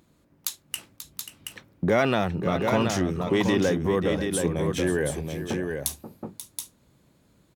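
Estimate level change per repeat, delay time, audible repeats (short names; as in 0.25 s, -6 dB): no steady repeat, 0.536 s, 2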